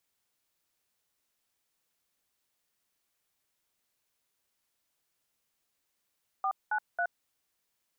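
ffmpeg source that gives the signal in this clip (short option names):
-f lavfi -i "aevalsrc='0.0335*clip(min(mod(t,0.273),0.072-mod(t,0.273))/0.002,0,1)*(eq(floor(t/0.273),0)*(sin(2*PI*770*mod(t,0.273))+sin(2*PI*1209*mod(t,0.273)))+eq(floor(t/0.273),1)*(sin(2*PI*852*mod(t,0.273))+sin(2*PI*1477*mod(t,0.273)))+eq(floor(t/0.273),2)*(sin(2*PI*697*mod(t,0.273))+sin(2*PI*1477*mod(t,0.273))))':d=0.819:s=44100"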